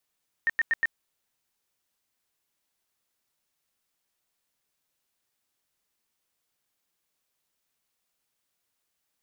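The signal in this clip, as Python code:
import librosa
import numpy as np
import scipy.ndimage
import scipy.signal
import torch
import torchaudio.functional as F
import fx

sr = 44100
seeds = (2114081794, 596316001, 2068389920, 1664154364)

y = fx.tone_burst(sr, hz=1830.0, cycles=48, every_s=0.12, bursts=4, level_db=-20.0)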